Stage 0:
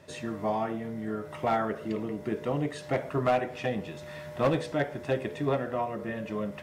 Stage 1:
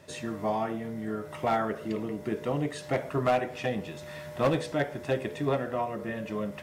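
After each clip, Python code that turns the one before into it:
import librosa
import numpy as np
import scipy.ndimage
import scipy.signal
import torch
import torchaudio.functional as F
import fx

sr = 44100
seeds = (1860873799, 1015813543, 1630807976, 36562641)

y = fx.high_shelf(x, sr, hz=5100.0, db=5.0)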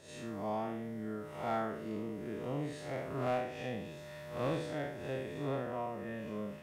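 y = fx.spec_blur(x, sr, span_ms=138.0)
y = F.gain(torch.from_numpy(y), -5.5).numpy()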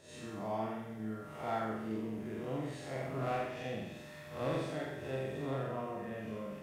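y = fx.room_flutter(x, sr, wall_m=7.8, rt60_s=0.8)
y = F.gain(torch.from_numpy(y), -2.5).numpy()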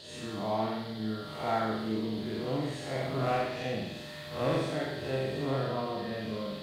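y = fx.dmg_noise_band(x, sr, seeds[0], low_hz=3000.0, high_hz=4700.0, level_db=-57.0)
y = F.gain(torch.from_numpy(y), 6.0).numpy()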